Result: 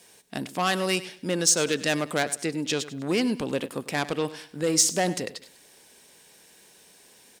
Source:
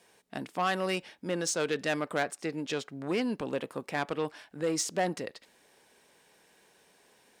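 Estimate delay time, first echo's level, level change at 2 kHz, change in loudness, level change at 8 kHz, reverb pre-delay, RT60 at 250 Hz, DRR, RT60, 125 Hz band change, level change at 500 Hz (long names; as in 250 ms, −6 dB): 99 ms, −16.0 dB, +5.0 dB, +7.0 dB, +12.5 dB, no reverb audible, no reverb audible, no reverb audible, no reverb audible, +7.0 dB, +4.0 dB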